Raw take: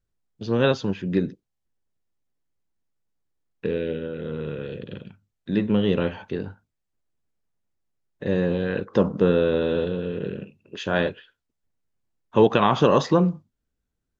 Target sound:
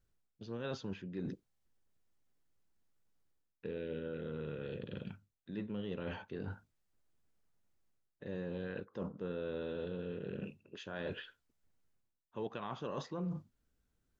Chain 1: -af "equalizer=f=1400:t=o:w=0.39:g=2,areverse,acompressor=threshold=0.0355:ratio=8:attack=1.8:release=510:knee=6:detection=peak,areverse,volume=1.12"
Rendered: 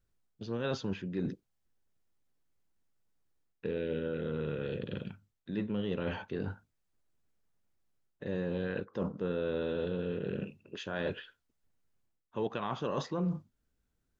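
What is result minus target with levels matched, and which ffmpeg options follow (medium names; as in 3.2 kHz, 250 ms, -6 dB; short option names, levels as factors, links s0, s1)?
compression: peak gain reduction -6.5 dB
-af "equalizer=f=1400:t=o:w=0.39:g=2,areverse,acompressor=threshold=0.015:ratio=8:attack=1.8:release=510:knee=6:detection=peak,areverse,volume=1.12"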